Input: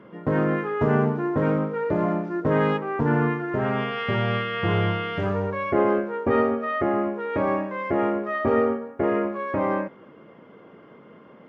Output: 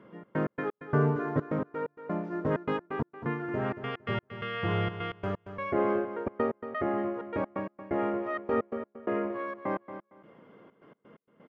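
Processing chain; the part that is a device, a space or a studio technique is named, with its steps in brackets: 0.53–1.45 comb 7 ms, depth 93%; trance gate with a delay (step gate "xx.x.x..xx" 129 bpm -60 dB; feedback echo 0.229 s, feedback 19%, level -11 dB); gain -6.5 dB

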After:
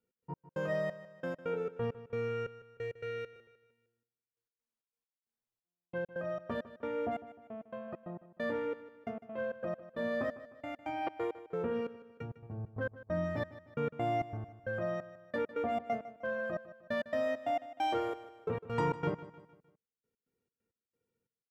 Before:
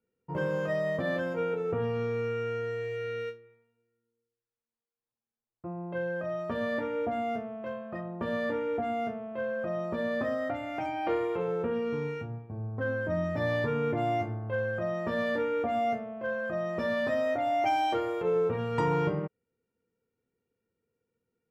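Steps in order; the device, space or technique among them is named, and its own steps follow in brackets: trance gate with a delay (step gate "x.x..xxx...x.x" 134 bpm -60 dB; feedback echo 0.153 s, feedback 45%, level -15.5 dB); gain -3.5 dB

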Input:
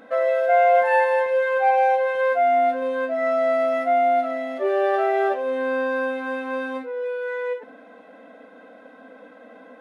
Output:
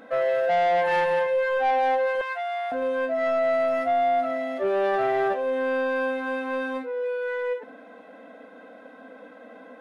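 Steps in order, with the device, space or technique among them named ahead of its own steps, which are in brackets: saturation between pre-emphasis and de-emphasis (high shelf 3600 Hz +9.5 dB; soft clip -17.5 dBFS, distortion -13 dB; high shelf 3600 Hz -9.5 dB); 2.21–2.72 HPF 870 Hz 24 dB/oct

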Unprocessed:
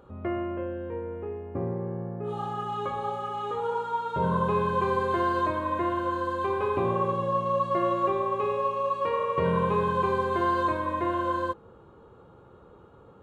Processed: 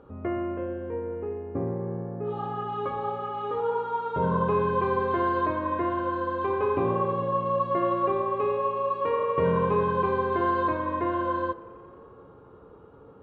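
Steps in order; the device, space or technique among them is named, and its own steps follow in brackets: inside a cardboard box (LPF 2800 Hz 12 dB/oct; small resonant body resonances 280/440 Hz, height 8 dB, ringing for 95 ms); tape echo 87 ms, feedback 88%, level -21.5 dB, low-pass 4000 Hz

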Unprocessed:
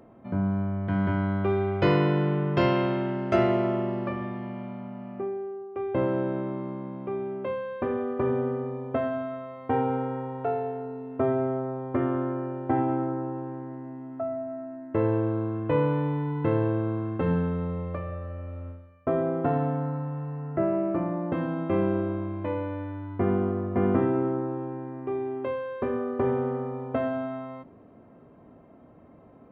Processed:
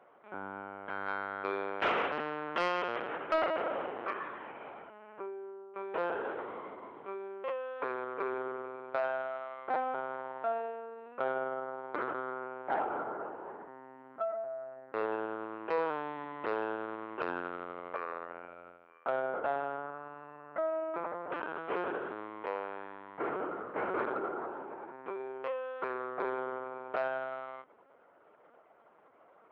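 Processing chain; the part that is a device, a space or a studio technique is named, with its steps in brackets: talking toy (LPC vocoder at 8 kHz pitch kept; HPF 680 Hz 12 dB/oct; bell 1400 Hz +6.5 dB 0.27 oct; soft clip -19.5 dBFS, distortion -22 dB)

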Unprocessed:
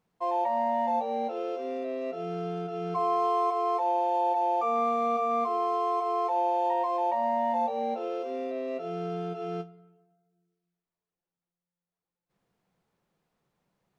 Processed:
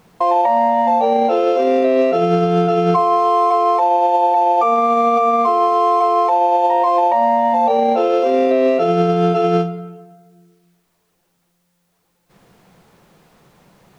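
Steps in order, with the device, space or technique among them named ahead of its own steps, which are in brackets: loud club master (compressor 2.5:1, threshold -31 dBFS, peak gain reduction 6 dB; hard clip -23.5 dBFS, distortion -53 dB; maximiser +32.5 dB); gain -6.5 dB

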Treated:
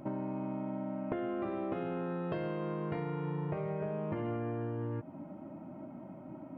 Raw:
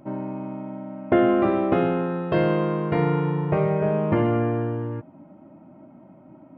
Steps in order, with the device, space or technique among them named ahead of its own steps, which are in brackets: serial compression, peaks first (compressor 4:1, threshold -31 dBFS, peak gain reduction 14 dB; compressor 2.5:1, threshold -36 dBFS, peak gain reduction 7.5 dB); gain +1 dB

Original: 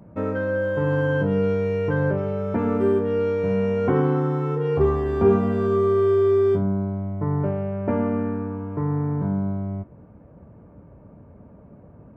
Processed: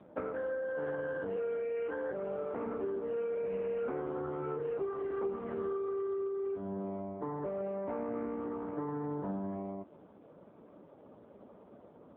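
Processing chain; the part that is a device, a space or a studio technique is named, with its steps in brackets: 1.36–2.13 HPF 270 Hz 24 dB/oct; voicemail (BPF 330–2700 Hz; compressor 10:1, threshold -32 dBFS, peak gain reduction 17.5 dB; AMR-NB 5.15 kbps 8000 Hz)

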